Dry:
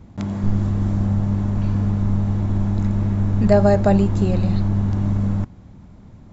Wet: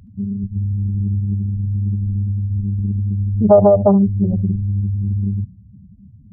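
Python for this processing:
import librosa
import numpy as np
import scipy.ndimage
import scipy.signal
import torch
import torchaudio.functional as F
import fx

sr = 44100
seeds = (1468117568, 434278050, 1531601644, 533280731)

y = fx.spec_expand(x, sr, power=3.3)
y = fx.highpass(y, sr, hz=160.0, slope=6)
y = y + 10.0 ** (-20.0 / 20.0) * np.pad(y, (int(72 * sr / 1000.0), 0))[:len(y)]
y = fx.doppler_dist(y, sr, depth_ms=0.37)
y = F.gain(torch.from_numpy(y), 5.5).numpy()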